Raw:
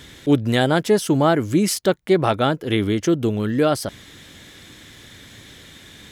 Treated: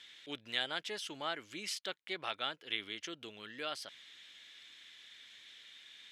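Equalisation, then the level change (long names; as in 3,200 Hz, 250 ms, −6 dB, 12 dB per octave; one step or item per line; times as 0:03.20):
resonant band-pass 3,000 Hz, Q 1.5
−7.5 dB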